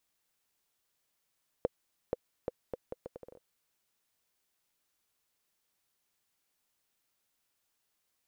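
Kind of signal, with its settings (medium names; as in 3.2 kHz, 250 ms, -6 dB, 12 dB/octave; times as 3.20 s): bouncing ball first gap 0.48 s, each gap 0.73, 501 Hz, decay 27 ms -16 dBFS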